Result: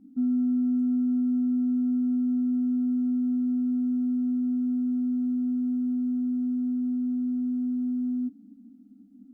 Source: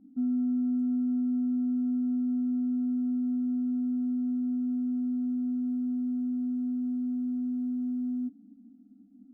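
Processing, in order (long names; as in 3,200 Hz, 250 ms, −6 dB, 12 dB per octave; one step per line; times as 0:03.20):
parametric band 610 Hz −8 dB 0.53 octaves
level +3.5 dB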